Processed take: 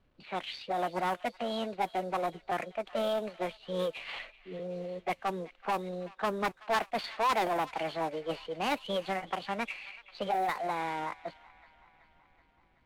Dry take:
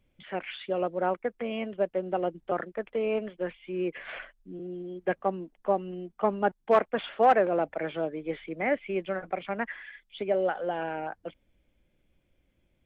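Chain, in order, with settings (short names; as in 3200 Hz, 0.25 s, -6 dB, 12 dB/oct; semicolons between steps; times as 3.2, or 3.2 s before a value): CVSD 64 kbps; soft clip -24 dBFS, distortion -9 dB; formant shift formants +5 st; on a send: thin delay 0.378 s, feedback 61%, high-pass 1400 Hz, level -16 dB; on the sum: low-pass opened by the level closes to 2700 Hz, open at -26.5 dBFS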